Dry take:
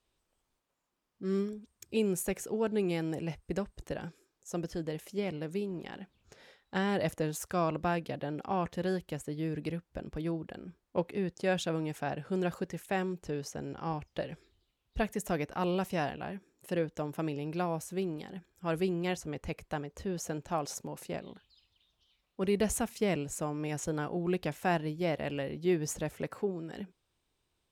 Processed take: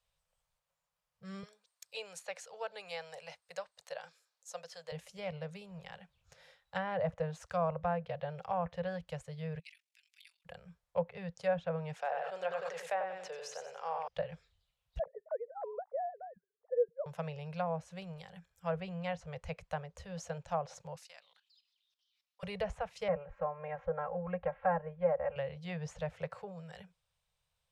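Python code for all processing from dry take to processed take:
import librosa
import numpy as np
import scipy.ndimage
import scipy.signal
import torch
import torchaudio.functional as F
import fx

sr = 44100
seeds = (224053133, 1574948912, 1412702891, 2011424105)

y = fx.chain(x, sr, fx.highpass(hz=590.0, slope=12),
    fx.peak_eq(hz=4300.0, db=7.0, octaves=0.43), at=(1.43, 4.92))
y = fx.chain(y, sr, fx.cheby1_highpass(hz=2200.0, order=4),
    fx.comb(ms=6.1, depth=0.81),
    fx.ring_mod(carrier_hz=23.0), at=(9.59, 10.45))
y = fx.chain(y, sr, fx.highpass(hz=340.0, slope=24),
    fx.echo_feedback(ms=92, feedback_pct=31, wet_db=-5.0),
    fx.sustainer(db_per_s=31.0), at=(11.95, 14.08))
y = fx.chain(y, sr, fx.sine_speech(),
    fx.gaussian_blur(sigma=8.6), at=(14.99, 17.06))
y = fx.chain(y, sr, fx.highpass(hz=1200.0, slope=12),
    fx.peak_eq(hz=5100.0, db=8.0, octaves=0.78),
    fx.level_steps(step_db=13), at=(20.96, 22.43))
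y = fx.chain(y, sr, fx.lowpass(hz=1900.0, slope=24),
    fx.comb(ms=3.7, depth=0.93), at=(23.08, 25.36))
y = scipy.signal.sosfilt(scipy.signal.cheby1(3, 1.0, [170.0, 500.0], 'bandstop', fs=sr, output='sos'), y)
y = fx.env_lowpass_down(y, sr, base_hz=1400.0, full_db=-29.5)
y = fx.dynamic_eq(y, sr, hz=550.0, q=0.79, threshold_db=-46.0, ratio=4.0, max_db=4)
y = F.gain(torch.from_numpy(y), -3.0).numpy()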